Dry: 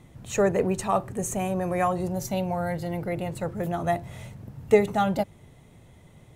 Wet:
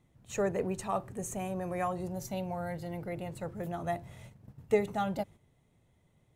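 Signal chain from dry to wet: gate -40 dBFS, range -8 dB; trim -8.5 dB

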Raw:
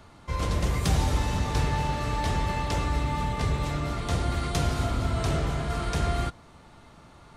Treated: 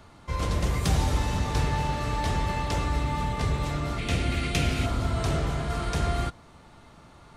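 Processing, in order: 3.98–4.86 s: fifteen-band graphic EQ 250 Hz +4 dB, 1 kHz -8 dB, 2.5 kHz +11 dB

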